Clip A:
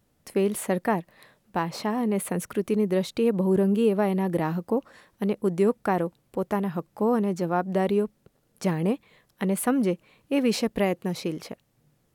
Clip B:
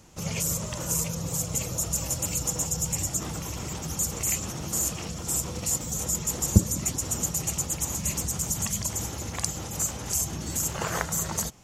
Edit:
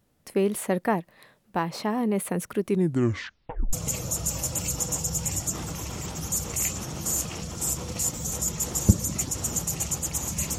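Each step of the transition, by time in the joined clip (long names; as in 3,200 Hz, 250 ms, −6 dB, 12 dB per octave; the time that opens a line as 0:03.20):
clip A
0:02.66: tape stop 1.07 s
0:03.73: continue with clip B from 0:01.40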